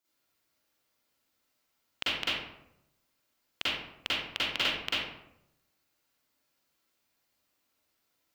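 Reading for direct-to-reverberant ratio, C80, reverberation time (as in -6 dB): -11.0 dB, 2.0 dB, 0.80 s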